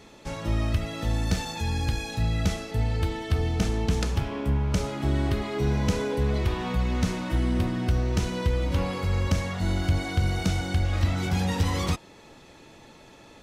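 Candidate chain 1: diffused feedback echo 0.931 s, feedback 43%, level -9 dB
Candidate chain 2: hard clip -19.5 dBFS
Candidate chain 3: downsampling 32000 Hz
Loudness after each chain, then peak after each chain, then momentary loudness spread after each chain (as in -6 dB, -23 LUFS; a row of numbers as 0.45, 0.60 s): -27.0, -28.0, -27.0 LUFS; -12.0, -19.5, -13.5 dBFS; 6, 3, 3 LU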